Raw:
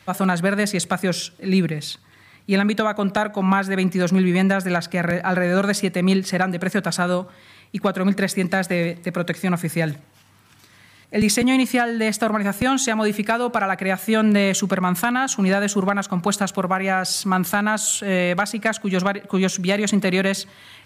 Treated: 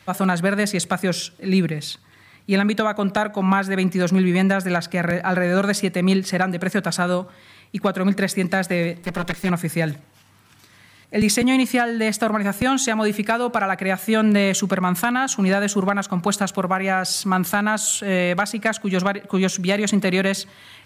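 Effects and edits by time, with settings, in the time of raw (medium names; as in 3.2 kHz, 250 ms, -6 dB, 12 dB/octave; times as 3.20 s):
9.02–9.50 s: comb filter that takes the minimum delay 5 ms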